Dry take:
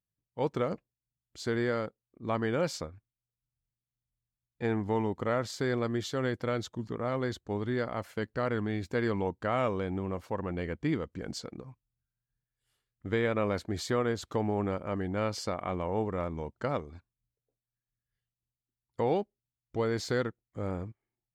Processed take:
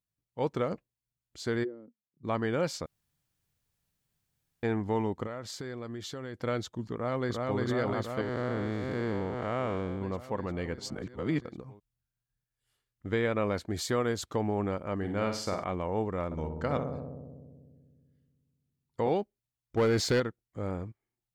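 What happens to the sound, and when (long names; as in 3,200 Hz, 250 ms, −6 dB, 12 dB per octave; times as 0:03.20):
0:01.63–0:02.23: resonant band-pass 380 Hz → 140 Hz, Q 8.2
0:02.86–0:04.63: fill with room tone
0:05.26–0:06.37: downward compressor 4 to 1, threshold −36 dBFS
0:06.94–0:07.59: delay throw 350 ms, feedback 80%, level −1.5 dB
0:08.21–0:10.02: spectrum smeared in time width 254 ms
0:10.78–0:11.45: reverse
0:13.69–0:14.24: high-shelf EQ 8,800 Hz → 5,200 Hz +9 dB
0:14.97–0:15.64: flutter between parallel walls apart 8.7 metres, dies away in 0.46 s
0:16.25–0:19.09: feedback echo with a low-pass in the loop 63 ms, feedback 85%, low-pass 1,100 Hz, level −5.5 dB
0:19.77–0:20.20: leveller curve on the samples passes 2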